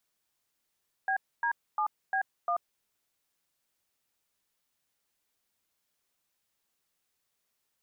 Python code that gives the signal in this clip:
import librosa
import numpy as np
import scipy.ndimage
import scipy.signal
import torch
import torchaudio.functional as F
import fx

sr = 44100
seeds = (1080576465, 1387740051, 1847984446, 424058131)

y = fx.dtmf(sr, digits='BD7B1', tone_ms=86, gap_ms=264, level_db=-28.5)